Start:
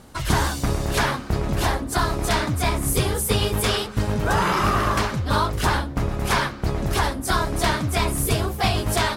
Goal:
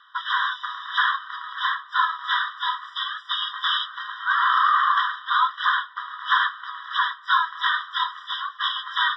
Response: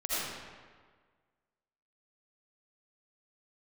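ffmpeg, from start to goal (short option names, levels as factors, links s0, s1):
-af "asuperpass=centerf=1800:order=12:qfactor=0.55,afftfilt=real='re*eq(mod(floor(b*sr/1024/980),2),1)':imag='im*eq(mod(floor(b*sr/1024/980),2),1)':win_size=1024:overlap=0.75,volume=1.78"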